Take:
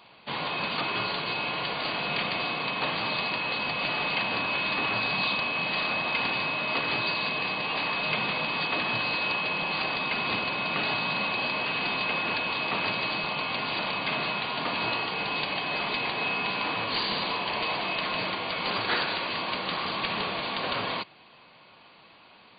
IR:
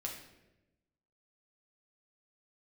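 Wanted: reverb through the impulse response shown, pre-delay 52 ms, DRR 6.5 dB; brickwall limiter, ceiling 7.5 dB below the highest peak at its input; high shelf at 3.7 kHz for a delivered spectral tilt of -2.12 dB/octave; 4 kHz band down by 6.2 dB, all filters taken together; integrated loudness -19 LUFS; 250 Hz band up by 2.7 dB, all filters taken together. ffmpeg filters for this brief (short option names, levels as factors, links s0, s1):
-filter_complex "[0:a]equalizer=f=250:t=o:g=3.5,highshelf=f=3700:g=-3.5,equalizer=f=4000:t=o:g=-6,alimiter=limit=0.075:level=0:latency=1,asplit=2[s0][s1];[1:a]atrim=start_sample=2205,adelay=52[s2];[s1][s2]afir=irnorm=-1:irlink=0,volume=0.473[s3];[s0][s3]amix=inputs=2:normalize=0,volume=3.76"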